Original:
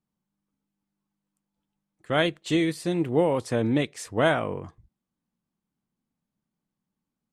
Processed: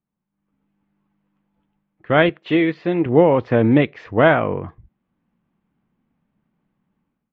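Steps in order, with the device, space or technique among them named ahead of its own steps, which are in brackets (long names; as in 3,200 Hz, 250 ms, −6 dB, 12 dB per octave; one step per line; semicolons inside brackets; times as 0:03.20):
0:02.29–0:03.06: high-pass filter 270 Hz 6 dB per octave
action camera in a waterproof case (low-pass filter 2,700 Hz 24 dB per octave; automatic gain control gain up to 14 dB; AAC 64 kbit/s 16,000 Hz)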